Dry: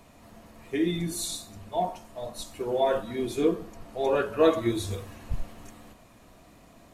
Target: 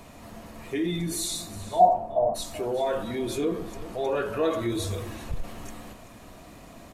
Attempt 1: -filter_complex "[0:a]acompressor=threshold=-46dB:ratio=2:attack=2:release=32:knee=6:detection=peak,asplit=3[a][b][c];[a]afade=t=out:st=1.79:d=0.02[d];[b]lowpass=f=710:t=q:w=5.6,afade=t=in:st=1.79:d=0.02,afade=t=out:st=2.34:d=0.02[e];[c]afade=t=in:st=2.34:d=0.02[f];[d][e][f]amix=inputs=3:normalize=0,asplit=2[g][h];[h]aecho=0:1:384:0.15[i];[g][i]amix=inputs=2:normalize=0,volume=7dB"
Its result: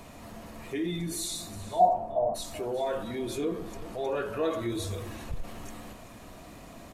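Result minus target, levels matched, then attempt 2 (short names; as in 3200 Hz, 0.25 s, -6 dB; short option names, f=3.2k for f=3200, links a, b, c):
compressor: peak gain reduction +4 dB
-filter_complex "[0:a]acompressor=threshold=-38.5dB:ratio=2:attack=2:release=32:knee=6:detection=peak,asplit=3[a][b][c];[a]afade=t=out:st=1.79:d=0.02[d];[b]lowpass=f=710:t=q:w=5.6,afade=t=in:st=1.79:d=0.02,afade=t=out:st=2.34:d=0.02[e];[c]afade=t=in:st=2.34:d=0.02[f];[d][e][f]amix=inputs=3:normalize=0,asplit=2[g][h];[h]aecho=0:1:384:0.15[i];[g][i]amix=inputs=2:normalize=0,volume=7dB"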